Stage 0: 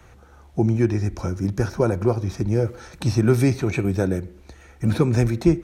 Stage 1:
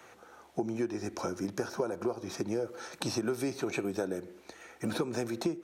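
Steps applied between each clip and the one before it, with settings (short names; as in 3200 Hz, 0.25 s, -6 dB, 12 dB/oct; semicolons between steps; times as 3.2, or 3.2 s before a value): HPF 330 Hz 12 dB/oct; dynamic EQ 2100 Hz, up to -7 dB, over -51 dBFS, Q 3; compressor 6:1, threshold -29 dBFS, peak gain reduction 13 dB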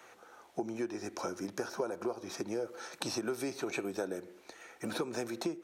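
low shelf 190 Hz -11 dB; gain -1 dB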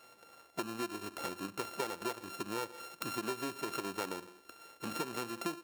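sample sorter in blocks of 32 samples; gain -2.5 dB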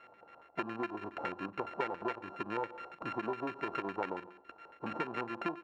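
LFO low-pass square 7.2 Hz 840–2100 Hz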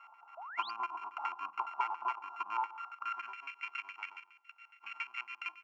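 high-pass sweep 970 Hz -> 2100 Hz, 2.69–3.49; fixed phaser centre 2600 Hz, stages 8; painted sound rise, 0.37–0.71, 620–5000 Hz -46 dBFS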